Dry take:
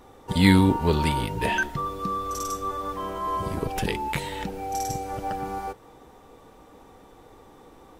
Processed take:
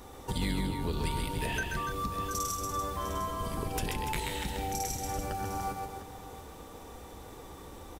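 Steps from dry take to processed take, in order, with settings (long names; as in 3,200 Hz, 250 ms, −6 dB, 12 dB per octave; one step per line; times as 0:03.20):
sub-octave generator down 2 octaves, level +2 dB
high-shelf EQ 3,700 Hz +9.5 dB
downward compressor 4 to 1, threshold −33 dBFS, peak gain reduction 19.5 dB
multi-tap delay 133/289/704 ms −5/−8.5/−13.5 dB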